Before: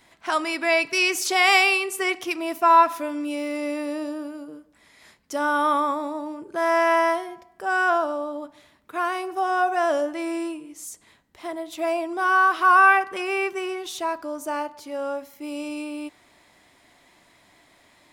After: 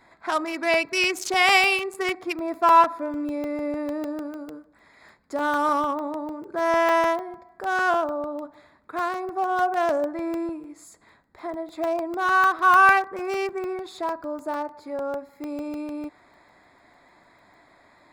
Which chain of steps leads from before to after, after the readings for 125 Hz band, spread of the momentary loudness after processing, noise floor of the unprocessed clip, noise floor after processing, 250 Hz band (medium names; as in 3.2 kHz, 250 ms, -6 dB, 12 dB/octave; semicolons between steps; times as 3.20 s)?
no reading, 17 LU, -58 dBFS, -58 dBFS, 0.0 dB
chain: local Wiener filter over 15 samples; crackling interface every 0.15 s, samples 64, zero, from 0.74 s; tape noise reduction on one side only encoder only